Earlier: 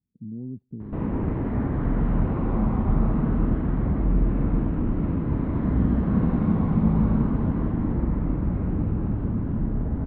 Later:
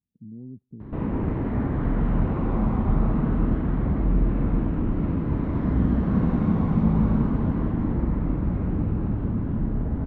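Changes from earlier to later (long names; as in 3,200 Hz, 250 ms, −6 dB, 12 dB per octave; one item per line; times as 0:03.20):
speech −5.0 dB
background: remove high-frequency loss of the air 160 metres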